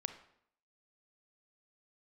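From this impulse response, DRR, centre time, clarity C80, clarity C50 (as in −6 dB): 9.0 dB, 9 ms, 14.0 dB, 10.5 dB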